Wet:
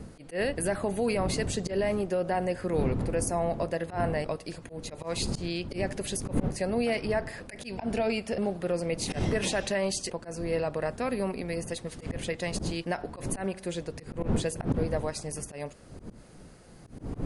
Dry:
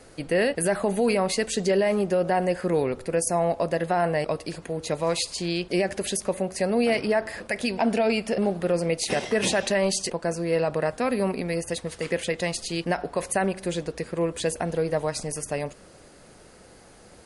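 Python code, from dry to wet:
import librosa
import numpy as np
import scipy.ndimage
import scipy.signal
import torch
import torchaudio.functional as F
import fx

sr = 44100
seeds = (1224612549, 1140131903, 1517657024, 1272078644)

y = fx.dmg_wind(x, sr, seeds[0], corner_hz=220.0, level_db=-29.0)
y = fx.auto_swell(y, sr, attack_ms=102.0)
y = y * librosa.db_to_amplitude(-5.5)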